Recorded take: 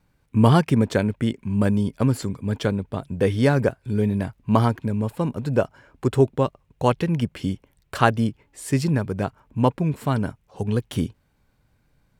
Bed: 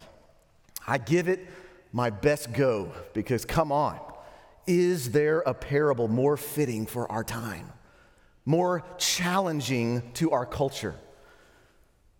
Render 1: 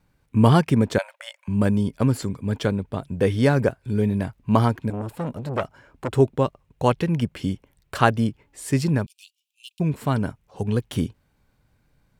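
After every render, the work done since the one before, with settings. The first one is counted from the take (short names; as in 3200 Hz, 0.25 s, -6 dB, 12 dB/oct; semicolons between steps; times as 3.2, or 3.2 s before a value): 0.98–1.48 brick-wall FIR high-pass 530 Hz; 4.9–6.15 core saturation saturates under 1400 Hz; 9.06–9.8 steep high-pass 2700 Hz 72 dB/oct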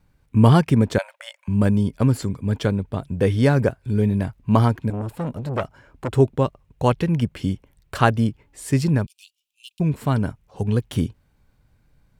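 low shelf 110 Hz +7 dB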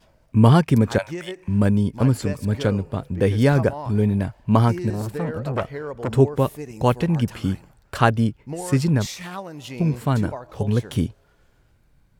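add bed -8 dB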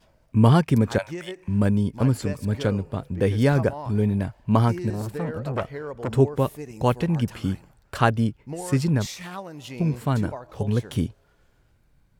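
gain -2.5 dB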